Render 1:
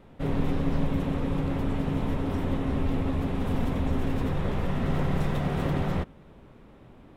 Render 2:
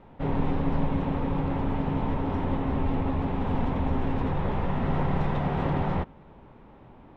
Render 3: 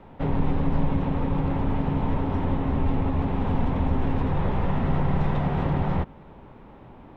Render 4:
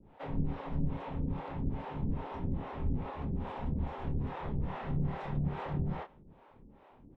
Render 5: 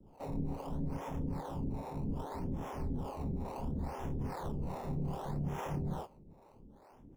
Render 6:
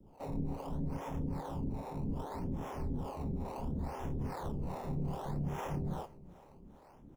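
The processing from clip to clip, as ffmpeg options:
ffmpeg -i in.wav -af "lowpass=3200,equalizer=frequency=880:width_type=o:width=0.45:gain=8" out.wav
ffmpeg -i in.wav -filter_complex "[0:a]acrossover=split=190[link_01][link_02];[link_02]acompressor=threshold=-31dB:ratio=6[link_03];[link_01][link_03]amix=inputs=2:normalize=0,volume=4dB" out.wav
ffmpeg -i in.wav -filter_complex "[0:a]asplit=2[link_01][link_02];[link_02]adelay=28,volume=-6dB[link_03];[link_01][link_03]amix=inputs=2:normalize=0,acrossover=split=410[link_04][link_05];[link_04]aeval=exprs='val(0)*(1-1/2+1/2*cos(2*PI*2.4*n/s))':channel_layout=same[link_06];[link_05]aeval=exprs='val(0)*(1-1/2-1/2*cos(2*PI*2.4*n/s))':channel_layout=same[link_07];[link_06][link_07]amix=inputs=2:normalize=0,volume=-7.5dB" out.wav
ffmpeg -i in.wav -filter_complex "[0:a]acrossover=split=210|1200[link_01][link_02][link_03];[link_01]alimiter=level_in=8dB:limit=-24dB:level=0:latency=1,volume=-8dB[link_04];[link_03]acrusher=samples=19:mix=1:aa=0.000001:lfo=1:lforange=19:lforate=0.67[link_05];[link_04][link_02][link_05]amix=inputs=3:normalize=0" out.wav
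ffmpeg -i in.wav -af "aecho=1:1:386|772|1158|1544:0.0944|0.0529|0.0296|0.0166" out.wav

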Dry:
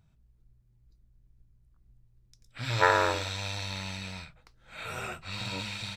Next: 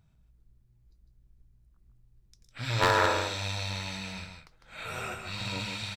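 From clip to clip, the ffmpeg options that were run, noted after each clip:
ffmpeg -i in.wav -af "aecho=1:1:153:0.501,aeval=exprs='0.211*(abs(mod(val(0)/0.211+3,4)-2)-1)':channel_layout=same" out.wav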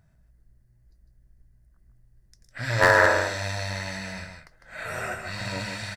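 ffmpeg -i in.wav -af "superequalizer=8b=2:11b=2.51:12b=0.631:13b=0.447:16b=1.41,volume=3dB" out.wav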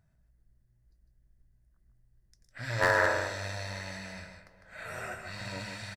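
ffmpeg -i in.wav -filter_complex "[0:a]asplit=2[link_01][link_02];[link_02]adelay=411,lowpass=frequency=2100:poles=1,volume=-19dB,asplit=2[link_03][link_04];[link_04]adelay=411,lowpass=frequency=2100:poles=1,volume=0.48,asplit=2[link_05][link_06];[link_06]adelay=411,lowpass=frequency=2100:poles=1,volume=0.48,asplit=2[link_07][link_08];[link_08]adelay=411,lowpass=frequency=2100:poles=1,volume=0.48[link_09];[link_01][link_03][link_05][link_07][link_09]amix=inputs=5:normalize=0,volume=-7.5dB" out.wav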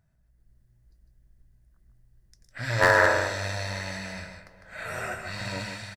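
ffmpeg -i in.wav -af "dynaudnorm=framelen=110:gausssize=7:maxgain=6dB" out.wav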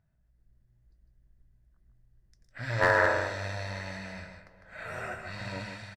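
ffmpeg -i in.wav -af "highshelf=frequency=5300:gain=-11.5,volume=-3.5dB" out.wav

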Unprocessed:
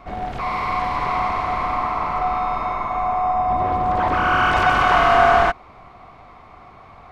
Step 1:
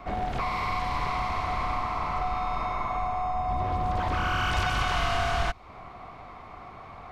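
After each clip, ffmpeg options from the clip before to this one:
ffmpeg -i in.wav -filter_complex "[0:a]acrossover=split=140|3000[link_01][link_02][link_03];[link_02]acompressor=threshold=-28dB:ratio=6[link_04];[link_01][link_04][link_03]amix=inputs=3:normalize=0" out.wav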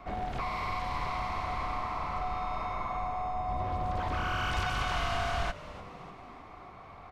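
ffmpeg -i in.wav -filter_complex "[0:a]asplit=6[link_01][link_02][link_03][link_04][link_05][link_06];[link_02]adelay=297,afreqshift=-100,volume=-16dB[link_07];[link_03]adelay=594,afreqshift=-200,volume=-20.9dB[link_08];[link_04]adelay=891,afreqshift=-300,volume=-25.8dB[link_09];[link_05]adelay=1188,afreqshift=-400,volume=-30.6dB[link_10];[link_06]adelay=1485,afreqshift=-500,volume=-35.5dB[link_11];[link_01][link_07][link_08][link_09][link_10][link_11]amix=inputs=6:normalize=0,volume=-5dB" out.wav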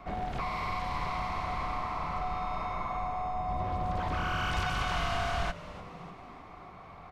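ffmpeg -i in.wav -af "equalizer=frequency=170:width=6.8:gain=7.5" out.wav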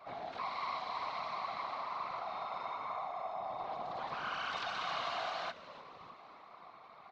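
ffmpeg -i in.wav -af "highpass=frequency=220:width=0.5412,highpass=frequency=220:width=1.3066,equalizer=frequency=250:width_type=q:width=4:gain=-8,equalizer=frequency=360:width_type=q:width=4:gain=-6,equalizer=frequency=1100:width_type=q:width=4:gain=4,equalizer=frequency=4000:width_type=q:width=4:gain=9,lowpass=frequency=6000:width=0.5412,lowpass=frequency=6000:width=1.3066,afftfilt=real='hypot(re,im)*cos(2*PI*random(0))':imag='hypot(re,im)*sin(2*PI*random(1))':win_size=512:overlap=0.75,volume=-1dB" out.wav

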